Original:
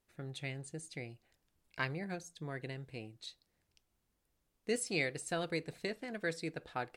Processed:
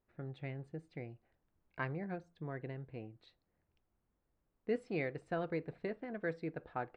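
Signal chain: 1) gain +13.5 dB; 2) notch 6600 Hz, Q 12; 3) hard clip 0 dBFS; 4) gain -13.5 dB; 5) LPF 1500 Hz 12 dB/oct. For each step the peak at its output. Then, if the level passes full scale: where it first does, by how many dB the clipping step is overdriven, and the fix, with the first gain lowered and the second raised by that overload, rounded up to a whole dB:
-5.5, -5.5, -5.5, -19.0, -23.5 dBFS; no overload

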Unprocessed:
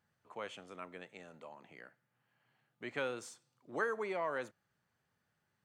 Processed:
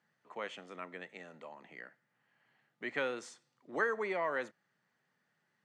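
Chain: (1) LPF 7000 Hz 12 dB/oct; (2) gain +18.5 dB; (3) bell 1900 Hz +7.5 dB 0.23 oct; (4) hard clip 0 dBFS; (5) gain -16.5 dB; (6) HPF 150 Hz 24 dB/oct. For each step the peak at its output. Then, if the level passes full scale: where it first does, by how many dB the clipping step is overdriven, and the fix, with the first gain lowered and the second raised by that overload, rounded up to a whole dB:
-22.0, -3.5, -2.0, -2.0, -18.5, -19.5 dBFS; no overload

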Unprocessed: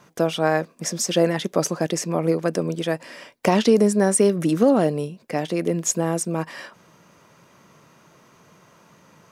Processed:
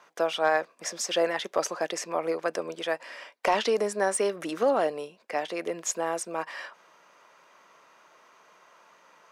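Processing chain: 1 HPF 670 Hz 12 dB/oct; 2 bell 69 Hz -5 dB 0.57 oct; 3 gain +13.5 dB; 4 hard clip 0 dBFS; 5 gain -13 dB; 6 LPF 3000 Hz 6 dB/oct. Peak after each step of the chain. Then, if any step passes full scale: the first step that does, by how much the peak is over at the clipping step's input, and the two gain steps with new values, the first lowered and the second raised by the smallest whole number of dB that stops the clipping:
-8.5, -8.5, +5.0, 0.0, -13.0, -13.0 dBFS; step 3, 5.0 dB; step 3 +8.5 dB, step 5 -8 dB

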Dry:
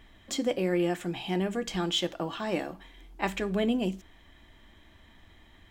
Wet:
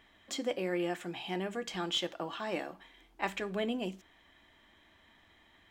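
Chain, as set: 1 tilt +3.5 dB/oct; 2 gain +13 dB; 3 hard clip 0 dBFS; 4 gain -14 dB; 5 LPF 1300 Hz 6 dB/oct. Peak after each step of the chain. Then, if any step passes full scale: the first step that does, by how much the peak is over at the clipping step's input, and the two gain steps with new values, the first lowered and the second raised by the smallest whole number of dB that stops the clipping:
-10.0, +3.0, 0.0, -14.0, -16.5 dBFS; step 2, 3.0 dB; step 2 +10 dB, step 4 -11 dB

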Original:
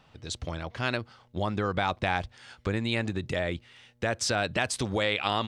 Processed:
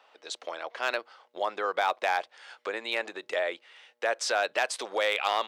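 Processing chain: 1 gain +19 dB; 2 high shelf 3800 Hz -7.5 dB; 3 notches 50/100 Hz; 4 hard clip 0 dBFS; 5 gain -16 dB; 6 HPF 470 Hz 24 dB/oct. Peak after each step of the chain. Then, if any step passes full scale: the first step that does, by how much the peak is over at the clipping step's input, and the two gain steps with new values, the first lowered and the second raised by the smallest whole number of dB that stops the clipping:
+7.5, +6.0, +6.0, 0.0, -16.0, -11.5 dBFS; step 1, 6.0 dB; step 1 +13 dB, step 5 -10 dB

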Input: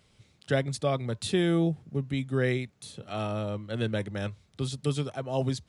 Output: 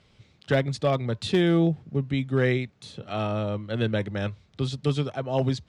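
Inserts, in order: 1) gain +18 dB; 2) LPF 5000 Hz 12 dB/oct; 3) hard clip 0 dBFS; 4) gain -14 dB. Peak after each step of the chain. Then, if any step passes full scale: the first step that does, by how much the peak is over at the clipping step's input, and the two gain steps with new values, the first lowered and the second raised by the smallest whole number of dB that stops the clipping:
+4.5, +4.5, 0.0, -14.0 dBFS; step 1, 4.5 dB; step 1 +13 dB, step 4 -9 dB

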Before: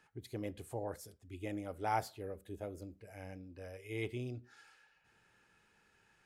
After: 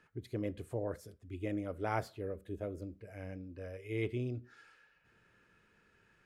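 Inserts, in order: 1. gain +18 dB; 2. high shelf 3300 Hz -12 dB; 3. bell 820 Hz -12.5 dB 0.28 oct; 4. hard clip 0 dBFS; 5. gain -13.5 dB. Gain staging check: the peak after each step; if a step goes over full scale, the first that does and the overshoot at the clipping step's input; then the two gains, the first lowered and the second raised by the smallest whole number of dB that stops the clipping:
-2.0, -3.5, -6.0, -6.0, -19.5 dBFS; no overload

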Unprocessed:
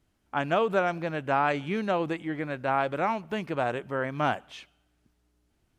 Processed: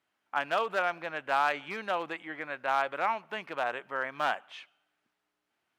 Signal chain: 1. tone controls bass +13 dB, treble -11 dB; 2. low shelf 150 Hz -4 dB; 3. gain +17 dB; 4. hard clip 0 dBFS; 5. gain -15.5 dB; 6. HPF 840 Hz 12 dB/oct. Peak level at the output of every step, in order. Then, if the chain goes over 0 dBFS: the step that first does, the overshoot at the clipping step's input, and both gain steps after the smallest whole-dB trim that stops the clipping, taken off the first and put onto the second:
-10.0, -10.5, +6.5, 0.0, -15.5, -14.0 dBFS; step 3, 6.5 dB; step 3 +10 dB, step 5 -8.5 dB

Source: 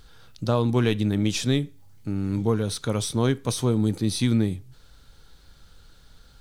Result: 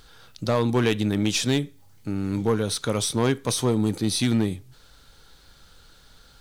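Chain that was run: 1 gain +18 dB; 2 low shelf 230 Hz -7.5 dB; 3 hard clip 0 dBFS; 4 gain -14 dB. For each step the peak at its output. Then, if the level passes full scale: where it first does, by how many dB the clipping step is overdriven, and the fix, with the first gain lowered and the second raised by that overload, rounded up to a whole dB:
+7.5, +7.5, 0.0, -14.0 dBFS; step 1, 7.5 dB; step 1 +10 dB, step 4 -6 dB

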